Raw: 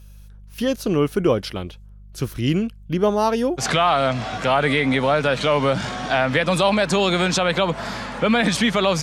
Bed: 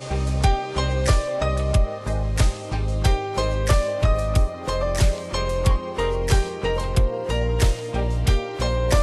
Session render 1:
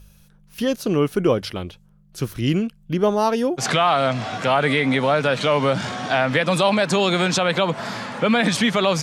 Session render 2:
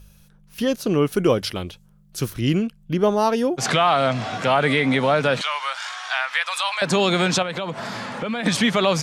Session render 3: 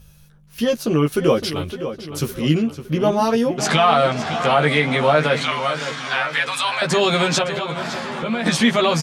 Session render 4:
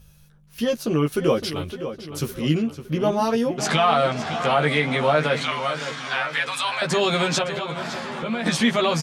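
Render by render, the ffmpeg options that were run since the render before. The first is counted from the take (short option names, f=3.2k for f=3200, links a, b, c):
-af "bandreject=f=50:t=h:w=4,bandreject=f=100:t=h:w=4"
-filter_complex "[0:a]asettb=1/sr,asplit=3[a][b][c];[a]atrim=end=1.124[d];[b]atrim=start=1.12:end=2.3,asetpts=PTS-STARTPTS,afade=t=in:d=0.004:c=qsin,afade=t=out:st=1.176:d=0.004:c=qsin,highshelf=f=3.7k:g=7[e];[c]atrim=start=2.296[f];[d][e]acrossfade=d=0.004:c1=hsin:c2=qsin[g];[g][f]acrossfade=d=0.004:c1=qsin:c2=hsin,asettb=1/sr,asplit=3[h][i][j];[h]atrim=end=5.414[k];[i]atrim=start=5.41:end=6.82,asetpts=PTS-STARTPTS,afade=t=in:d=0.004:c=qsin,afade=t=out:st=1.406:d=0.004:c=qsin,highpass=f=1k:w=0.5412,highpass=f=1k:w=1.3066[l];[j]atrim=start=6.816[m];[k][l]acrossfade=d=0.004:c1=hsin:c2=qsin[n];[n][m]acrossfade=d=0.004:c1=qsin:c2=hsin,asettb=1/sr,asplit=3[o][p][q];[o]atrim=end=7.424[r];[p]atrim=start=7.42:end=8.46,asetpts=PTS-STARTPTS,afade=t=in:d=0.004:c=qsin,afade=t=out:st=1.036:d=0.004:c=qsin,acompressor=threshold=-26dB:ratio=2.5:attack=3.2:release=140:knee=1:detection=peak[s];[q]atrim=start=8.456[t];[r][s]acrossfade=d=0.004:c1=hsin:c2=qsin[u];[u][t]acrossfade=d=0.004:c1=qsin:c2=hsin"
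-filter_complex "[0:a]asplit=2[a][b];[b]adelay=13,volume=-2.5dB[c];[a][c]amix=inputs=2:normalize=0,asplit=2[d][e];[e]adelay=561,lowpass=f=4.1k:p=1,volume=-10.5dB,asplit=2[f][g];[g]adelay=561,lowpass=f=4.1k:p=1,volume=0.51,asplit=2[h][i];[i]adelay=561,lowpass=f=4.1k:p=1,volume=0.51,asplit=2[j][k];[k]adelay=561,lowpass=f=4.1k:p=1,volume=0.51,asplit=2[l][m];[m]adelay=561,lowpass=f=4.1k:p=1,volume=0.51,asplit=2[n][o];[o]adelay=561,lowpass=f=4.1k:p=1,volume=0.51[p];[d][f][h][j][l][n][p]amix=inputs=7:normalize=0"
-af "volume=-3.5dB"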